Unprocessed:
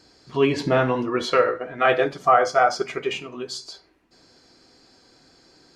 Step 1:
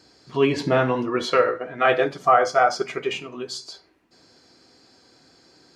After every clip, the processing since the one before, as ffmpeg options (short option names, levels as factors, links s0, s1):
-af "highpass=66"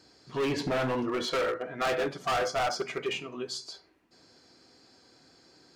-af "asoftclip=type=hard:threshold=0.0841,volume=0.631"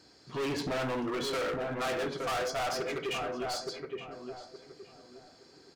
-filter_complex "[0:a]asplit=2[s0][s1];[s1]adelay=869,lowpass=f=1200:p=1,volume=0.501,asplit=2[s2][s3];[s3]adelay=869,lowpass=f=1200:p=1,volume=0.31,asplit=2[s4][s5];[s5]adelay=869,lowpass=f=1200:p=1,volume=0.31,asplit=2[s6][s7];[s7]adelay=869,lowpass=f=1200:p=1,volume=0.31[s8];[s0][s2][s4][s6][s8]amix=inputs=5:normalize=0,asoftclip=type=hard:threshold=0.0299"